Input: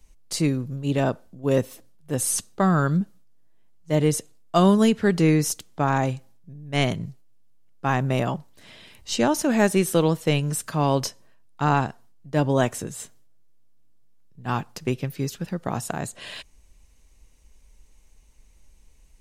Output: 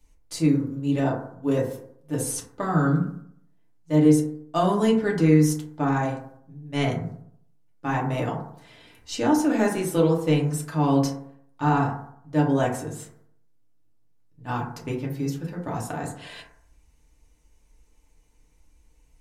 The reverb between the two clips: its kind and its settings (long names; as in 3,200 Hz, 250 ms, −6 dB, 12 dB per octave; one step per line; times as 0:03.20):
feedback delay network reverb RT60 0.66 s, low-frequency decay 1×, high-frequency decay 0.3×, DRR −3.5 dB
level −7.5 dB